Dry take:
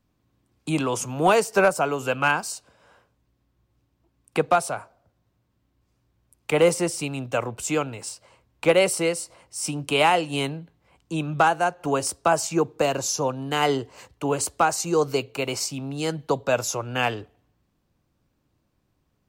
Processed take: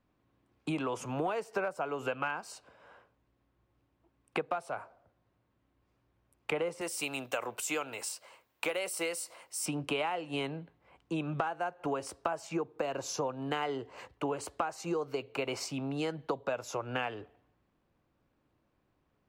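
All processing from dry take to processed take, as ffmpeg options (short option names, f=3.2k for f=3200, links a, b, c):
-filter_complex "[0:a]asettb=1/sr,asplit=3[a][b][c];[a]atrim=end=6.814[d];[b]atrim=start=6.81:end=9.66,asetpts=PTS-STARTPTS,afade=t=in:d=0.004:c=qsin,afade=t=out:st=2.846:d=0.004:c=qsin,aemphasis=mode=production:type=riaa,acompressor=threshold=-23dB:ratio=2:attack=3.2:release=140:knee=1:detection=peak[e];[c]atrim=start=9.656[f];[d][e]acrossfade=d=0.004:c1=hsin:c2=qsin[g];[g][f]acrossfade=d=0.004:c1=qsin:c2=hsin,bass=f=250:g=-7,treble=f=4k:g=-14,acompressor=threshold=-30dB:ratio=12"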